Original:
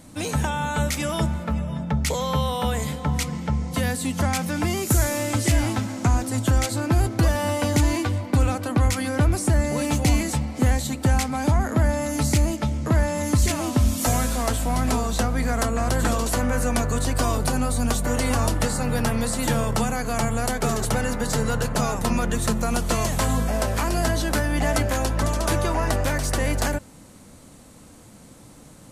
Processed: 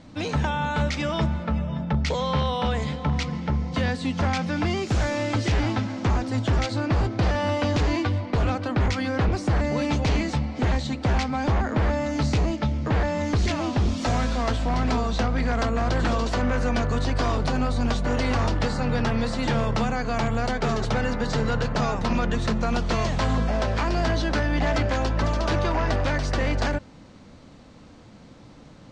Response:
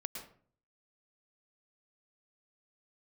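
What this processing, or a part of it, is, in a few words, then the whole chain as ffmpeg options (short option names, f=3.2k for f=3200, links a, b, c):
synthesiser wavefolder: -af "aeval=exprs='0.158*(abs(mod(val(0)/0.158+3,4)-2)-1)':c=same,lowpass=f=5.1k:w=0.5412,lowpass=f=5.1k:w=1.3066"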